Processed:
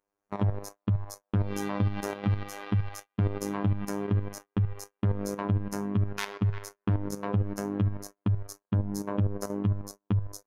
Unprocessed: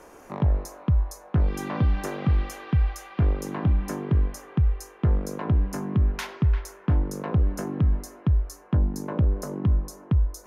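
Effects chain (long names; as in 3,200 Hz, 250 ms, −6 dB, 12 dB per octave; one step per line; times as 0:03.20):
phases set to zero 101 Hz
output level in coarse steps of 9 dB
noise gate −45 dBFS, range −37 dB
level +4 dB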